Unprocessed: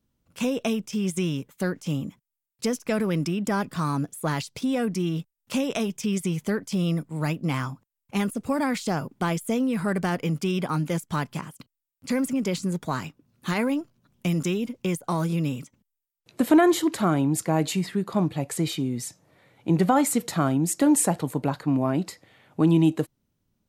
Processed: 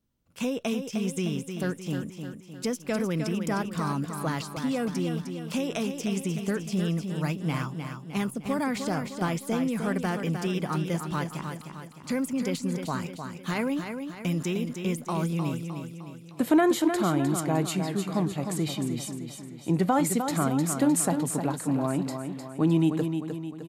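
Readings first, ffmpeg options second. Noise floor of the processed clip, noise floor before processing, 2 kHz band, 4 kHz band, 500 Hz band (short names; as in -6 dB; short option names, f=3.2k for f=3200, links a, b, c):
-45 dBFS, -84 dBFS, -2.5 dB, -2.5 dB, -2.5 dB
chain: -af "aecho=1:1:306|612|918|1224|1530|1836:0.447|0.223|0.112|0.0558|0.0279|0.014,volume=-3.5dB"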